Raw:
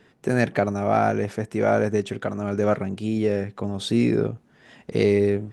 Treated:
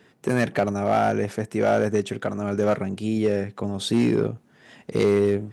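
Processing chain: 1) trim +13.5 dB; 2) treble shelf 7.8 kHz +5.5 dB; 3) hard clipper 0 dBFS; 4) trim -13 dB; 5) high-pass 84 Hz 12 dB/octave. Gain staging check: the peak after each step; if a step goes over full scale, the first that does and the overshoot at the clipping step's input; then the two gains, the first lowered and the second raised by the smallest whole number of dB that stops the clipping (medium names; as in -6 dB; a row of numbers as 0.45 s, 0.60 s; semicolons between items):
+8.0 dBFS, +8.0 dBFS, 0.0 dBFS, -13.0 dBFS, -10.5 dBFS; step 1, 8.0 dB; step 1 +5.5 dB, step 4 -5 dB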